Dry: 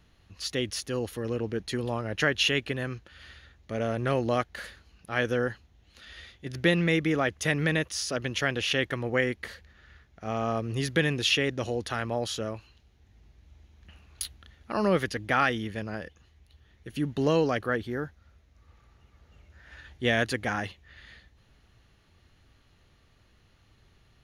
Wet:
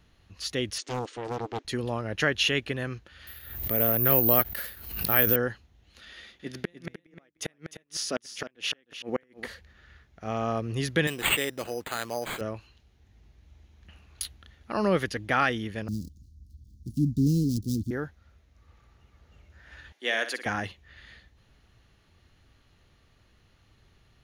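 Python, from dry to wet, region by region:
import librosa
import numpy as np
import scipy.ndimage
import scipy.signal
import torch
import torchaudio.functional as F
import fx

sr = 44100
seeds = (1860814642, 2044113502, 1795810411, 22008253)

y = fx.chain(x, sr, fx.brickwall_bandpass(low_hz=250.0, high_hz=9000.0),
    fx.notch(hz=740.0, q=5.5),
    fx.doppler_dist(depth_ms=0.69), at=(0.78, 1.65))
y = fx.chain(y, sr, fx.resample_bad(factor=3, down='none', up='zero_stuff'),
    fx.pre_swell(db_per_s=67.0), at=(3.27, 5.36))
y = fx.chain(y, sr, fx.low_shelf_res(hz=150.0, db=-9.0, q=1.5),
    fx.gate_flip(shuts_db=-16.0, range_db=-39),
    fx.echo_single(ms=304, db=-11.5), at=(6.09, 9.46))
y = fx.chain(y, sr, fx.highpass(hz=450.0, slope=6),
    fx.resample_bad(factor=8, down='none', up='hold'), at=(11.07, 12.41))
y = fx.chain(y, sr, fx.dead_time(dead_ms=0.13),
    fx.ellip_bandstop(low_hz=270.0, high_hz=4900.0, order=3, stop_db=50),
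    fx.low_shelf(hz=450.0, db=9.0), at=(15.88, 17.91))
y = fx.chain(y, sr, fx.bessel_highpass(hz=370.0, order=6),
    fx.low_shelf(hz=500.0, db=-8.0),
    fx.room_flutter(wall_m=9.9, rt60_s=0.32), at=(19.92, 20.46))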